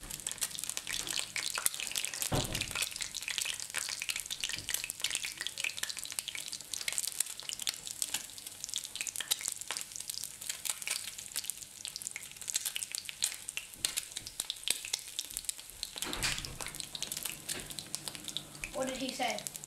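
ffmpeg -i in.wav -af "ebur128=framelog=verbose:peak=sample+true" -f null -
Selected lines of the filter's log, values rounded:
Integrated loudness:
  I:         -35.9 LUFS
  Threshold: -45.9 LUFS
Loudness range:
  LRA:         3.4 LU
  Threshold: -55.9 LUFS
  LRA low:   -37.5 LUFS
  LRA high:  -34.1 LUFS
Sample peak:
  Peak:       -9.4 dBFS
True peak:
  Peak:       -8.9 dBFS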